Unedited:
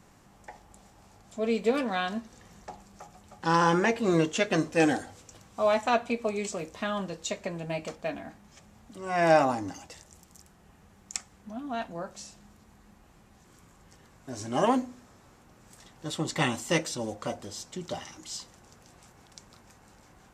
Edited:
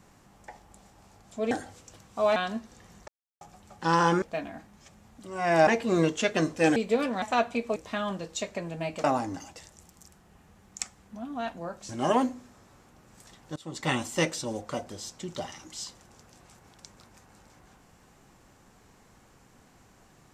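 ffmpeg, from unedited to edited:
ffmpeg -i in.wav -filter_complex "[0:a]asplit=13[link_01][link_02][link_03][link_04][link_05][link_06][link_07][link_08][link_09][link_10][link_11][link_12][link_13];[link_01]atrim=end=1.512[link_14];[link_02]atrim=start=4.918:end=5.772[link_15];[link_03]atrim=start=1.968:end=2.69,asetpts=PTS-STARTPTS,afade=type=out:start_time=0.718:duration=0.004:curve=hsin[link_16];[link_04]atrim=start=2.69:end=3.02,asetpts=PTS-STARTPTS,volume=0[link_17];[link_05]atrim=start=3.02:end=3.832,asetpts=PTS-STARTPTS,afade=type=in:duration=0.004:curve=hsin[link_18];[link_06]atrim=start=7.928:end=9.382[link_19];[link_07]atrim=start=3.828:end=4.922[link_20];[link_08]atrim=start=1.508:end=1.972[link_21];[link_09]atrim=start=5.768:end=6.312[link_22];[link_10]atrim=start=6.648:end=7.932[link_23];[link_11]atrim=start=9.378:end=12.232[link_24];[link_12]atrim=start=14.418:end=16.09,asetpts=PTS-STARTPTS,afade=type=out:start_time=1.668:duration=0.004:curve=hsin:silence=0.0749894[link_25];[link_13]atrim=start=16.09,asetpts=PTS-STARTPTS,afade=type=in:duration=0.39:silence=0.0749894[link_26];[link_14][link_15]acrossfade=duration=0.004:curve1=hsin:curve2=hsin[link_27];[link_16][link_17][link_18]concat=n=3:v=0:a=1[link_28];[link_27][link_28]acrossfade=duration=0.004:curve1=hsin:curve2=hsin[link_29];[link_29][link_19]acrossfade=duration=0.004:curve1=hsin:curve2=hsin[link_30];[link_30][link_20]acrossfade=duration=0.004:curve1=hsin:curve2=hsin[link_31];[link_31][link_21]acrossfade=duration=0.004:curve1=hsin:curve2=hsin[link_32];[link_32][link_22]acrossfade=duration=0.004:curve1=hsin:curve2=hsin[link_33];[link_33][link_23]acrossfade=duration=0.004:curve1=hsin:curve2=hsin[link_34];[link_34][link_24]acrossfade=duration=0.004:curve1=hsin:curve2=hsin[link_35];[link_25][link_26]concat=n=2:v=0:a=1[link_36];[link_35][link_36]acrossfade=duration=0.004:curve1=hsin:curve2=hsin" out.wav

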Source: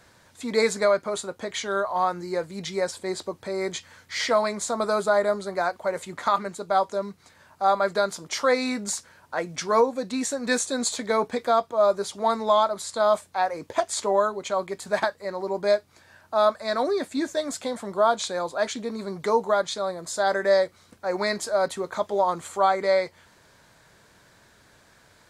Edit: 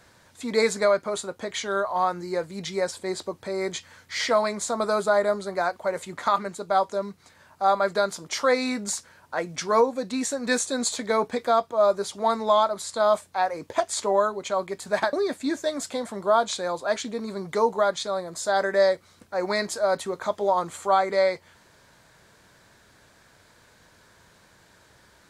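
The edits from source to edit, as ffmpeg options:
ffmpeg -i in.wav -filter_complex "[0:a]asplit=2[link_01][link_02];[link_01]atrim=end=15.132[link_03];[link_02]atrim=start=16.838[link_04];[link_03][link_04]acrossfade=duration=0.004:curve1=hsin:curve2=hsin" out.wav

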